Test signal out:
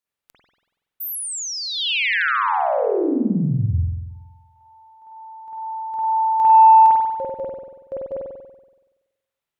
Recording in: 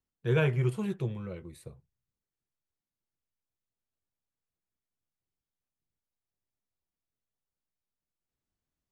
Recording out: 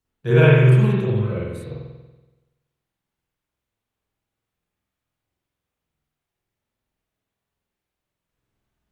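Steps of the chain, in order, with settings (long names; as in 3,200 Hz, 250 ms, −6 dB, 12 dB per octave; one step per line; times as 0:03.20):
spring reverb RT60 1.1 s, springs 47 ms, chirp 45 ms, DRR −7.5 dB
harmonic generator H 5 −41 dB, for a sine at −6 dBFS
level +5 dB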